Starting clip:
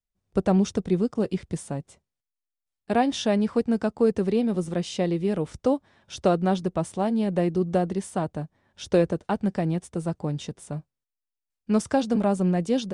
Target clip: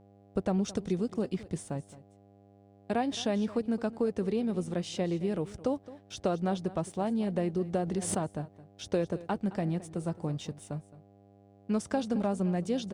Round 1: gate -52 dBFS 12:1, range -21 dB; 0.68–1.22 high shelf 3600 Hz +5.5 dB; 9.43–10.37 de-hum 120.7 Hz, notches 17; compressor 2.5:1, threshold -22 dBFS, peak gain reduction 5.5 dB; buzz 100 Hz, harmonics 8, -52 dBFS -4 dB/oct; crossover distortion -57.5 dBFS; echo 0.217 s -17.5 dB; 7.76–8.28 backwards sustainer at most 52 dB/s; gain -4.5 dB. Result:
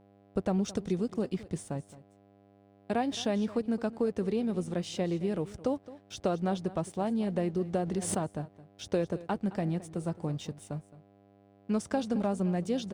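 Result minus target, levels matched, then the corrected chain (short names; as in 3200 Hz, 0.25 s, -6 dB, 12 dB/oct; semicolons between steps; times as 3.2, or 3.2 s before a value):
crossover distortion: distortion +7 dB
gate -52 dBFS 12:1, range -21 dB; 0.68–1.22 high shelf 3600 Hz +5.5 dB; 9.43–10.37 de-hum 120.7 Hz, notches 17; compressor 2.5:1, threshold -22 dBFS, peak gain reduction 5.5 dB; buzz 100 Hz, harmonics 8, -52 dBFS -4 dB/oct; crossover distortion -64.5 dBFS; echo 0.217 s -17.5 dB; 7.76–8.28 backwards sustainer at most 52 dB/s; gain -4.5 dB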